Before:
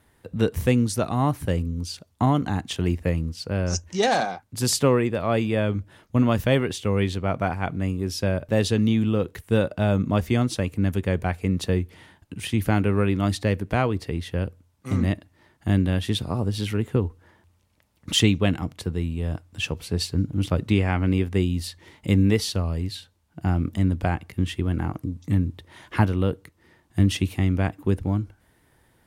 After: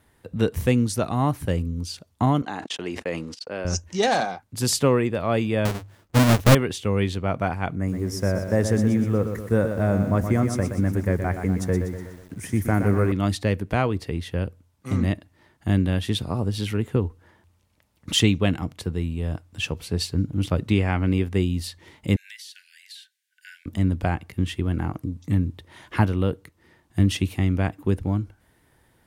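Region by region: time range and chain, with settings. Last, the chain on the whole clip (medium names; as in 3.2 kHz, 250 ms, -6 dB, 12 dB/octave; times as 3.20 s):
2.42–3.65 s: gate -35 dBFS, range -46 dB + band-pass 370–7300 Hz + decay stretcher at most 50 dB/s
5.65–6.55 s: square wave that keeps the level + hum notches 50/100/150 Hz + upward expansion, over -29 dBFS
7.75–13.12 s: high-order bell 3.4 kHz -16 dB 1 oct + band-stop 840 Hz, Q 22 + bit-crushed delay 122 ms, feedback 55%, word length 8-bit, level -7.5 dB
22.16–23.66 s: Chebyshev high-pass 1.5 kHz, order 10 + compression 12:1, threshold -38 dBFS
whole clip: none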